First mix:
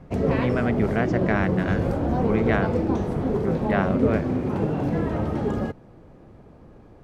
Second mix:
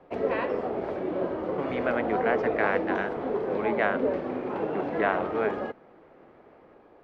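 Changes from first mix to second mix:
speech: entry +1.30 s
master: add three-way crossover with the lows and the highs turned down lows −22 dB, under 320 Hz, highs −22 dB, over 3,800 Hz

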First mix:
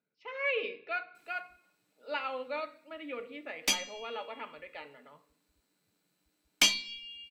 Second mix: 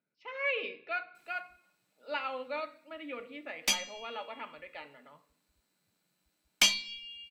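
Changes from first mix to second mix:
background: add parametric band 290 Hz −8 dB 0.29 octaves
master: add parametric band 440 Hz −6 dB 0.24 octaves

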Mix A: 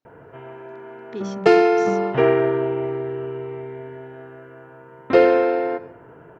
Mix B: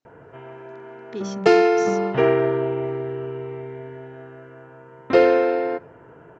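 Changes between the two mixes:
background: send −11.5 dB
master: add low-pass with resonance 6,800 Hz, resonance Q 1.7

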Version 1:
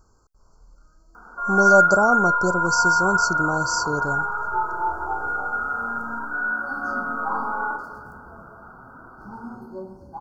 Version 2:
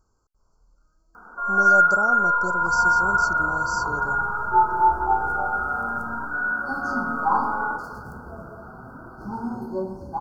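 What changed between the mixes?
speech −9.0 dB
second sound +7.5 dB

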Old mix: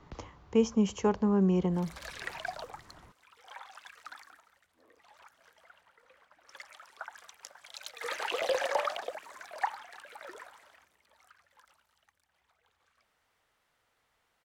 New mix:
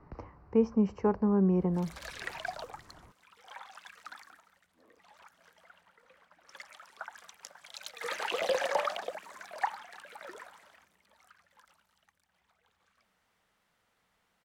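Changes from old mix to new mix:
speech: add moving average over 13 samples
background: add parametric band 190 Hz +11 dB 0.49 octaves

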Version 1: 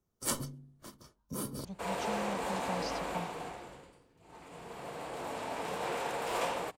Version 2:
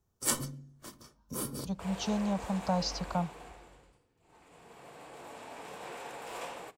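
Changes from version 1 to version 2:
speech +9.0 dB
second sound −9.0 dB
reverb: on, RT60 0.45 s

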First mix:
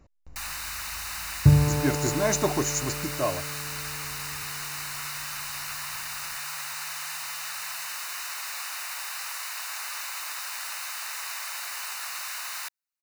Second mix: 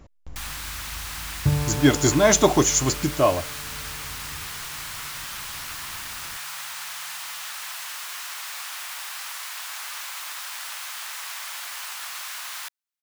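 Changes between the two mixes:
speech +8.5 dB
second sound: add low-shelf EQ 400 Hz −5.5 dB
master: remove Butterworth band-reject 3,300 Hz, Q 5.9

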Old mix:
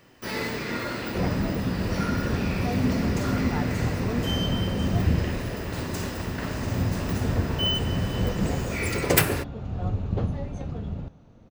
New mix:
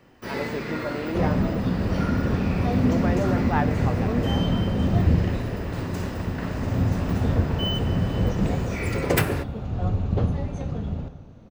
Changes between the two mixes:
speech +10.0 dB
first sound: add high-shelf EQ 3,200 Hz −9 dB
reverb: on, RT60 1.6 s

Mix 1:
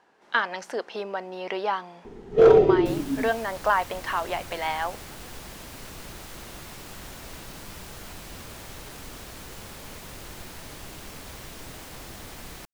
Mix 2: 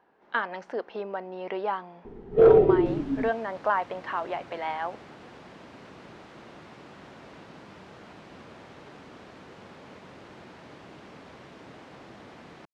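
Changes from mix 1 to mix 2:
second sound: add high-pass filter 170 Hz 12 dB per octave
master: add head-to-tape spacing loss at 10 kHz 30 dB

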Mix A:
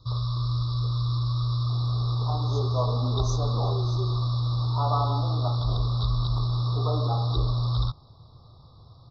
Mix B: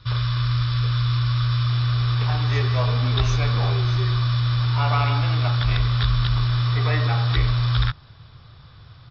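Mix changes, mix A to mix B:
first sound +4.0 dB
master: remove Chebyshev band-stop filter 1,200–3,800 Hz, order 4

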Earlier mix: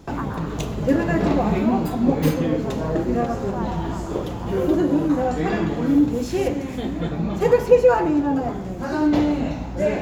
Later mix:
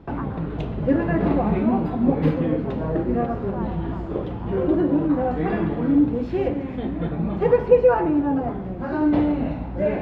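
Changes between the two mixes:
speech: send −7.5 dB
master: add high-frequency loss of the air 410 metres

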